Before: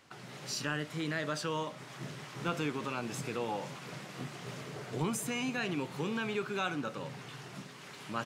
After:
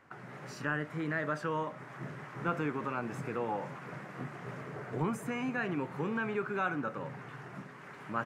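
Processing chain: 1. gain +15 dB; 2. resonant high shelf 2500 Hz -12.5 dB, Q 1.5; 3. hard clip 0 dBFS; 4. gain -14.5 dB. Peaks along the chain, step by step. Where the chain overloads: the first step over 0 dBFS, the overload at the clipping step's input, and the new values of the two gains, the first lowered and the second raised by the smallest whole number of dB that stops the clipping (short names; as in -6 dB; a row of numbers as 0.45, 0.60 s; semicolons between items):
-3.0, -3.0, -3.0, -17.5 dBFS; no overload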